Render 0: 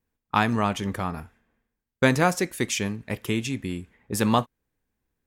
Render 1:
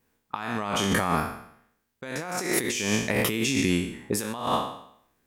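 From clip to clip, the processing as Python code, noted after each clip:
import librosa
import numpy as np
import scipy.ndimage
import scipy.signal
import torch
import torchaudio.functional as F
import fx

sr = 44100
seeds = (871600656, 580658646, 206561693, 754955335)

y = fx.spec_trails(x, sr, decay_s=0.67)
y = fx.low_shelf(y, sr, hz=120.0, db=-12.0)
y = fx.over_compress(y, sr, threshold_db=-32.0, ratio=-1.0)
y = y * librosa.db_to_amplitude(4.0)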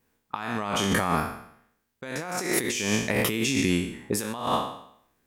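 y = x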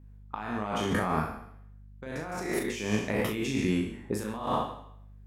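y = fx.high_shelf(x, sr, hz=2500.0, db=-11.0)
y = fx.add_hum(y, sr, base_hz=50, snr_db=19)
y = fx.room_early_taps(y, sr, ms=(38, 69), db=(-5.0, -14.5))
y = y * librosa.db_to_amplitude(-3.5)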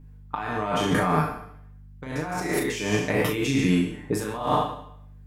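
y = x + 0.7 * np.pad(x, (int(6.7 * sr / 1000.0), 0))[:len(x)]
y = y * librosa.db_to_amplitude(4.5)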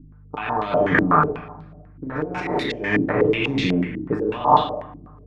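y = fx.hpss(x, sr, part='percussive', gain_db=5)
y = fx.room_shoebox(y, sr, seeds[0], volume_m3=1100.0, walls='mixed', distance_m=0.41)
y = fx.filter_held_lowpass(y, sr, hz=8.1, low_hz=300.0, high_hz=4000.0)
y = y * librosa.db_to_amplitude(-2.0)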